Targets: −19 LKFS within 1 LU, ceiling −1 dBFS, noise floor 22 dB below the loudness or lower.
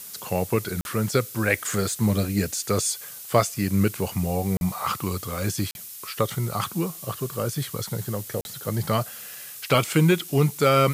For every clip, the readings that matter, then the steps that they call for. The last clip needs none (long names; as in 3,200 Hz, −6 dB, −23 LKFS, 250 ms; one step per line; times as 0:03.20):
number of dropouts 4; longest dropout 41 ms; background noise floor −40 dBFS; target noise floor −47 dBFS; integrated loudness −25.0 LKFS; sample peak −5.5 dBFS; target loudness −19.0 LKFS
→ repair the gap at 0:00.81/0:04.57/0:05.71/0:08.41, 41 ms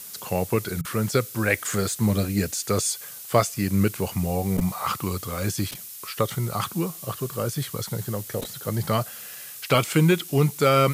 number of dropouts 0; background noise floor −40 dBFS; target noise floor −47 dBFS
→ noise reduction from a noise print 7 dB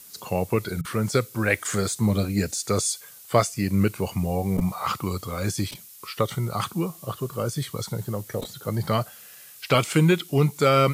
background noise floor −46 dBFS; target noise floor −48 dBFS
→ noise reduction from a noise print 6 dB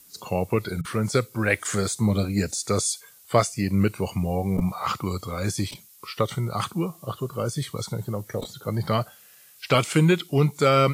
background noise floor −52 dBFS; integrated loudness −25.5 LKFS; sample peak −6.0 dBFS; target loudness −19.0 LKFS
→ level +6.5 dB
brickwall limiter −1 dBFS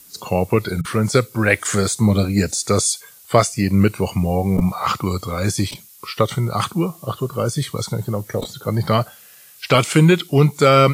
integrated loudness −19.0 LKFS; sample peak −1.0 dBFS; background noise floor −46 dBFS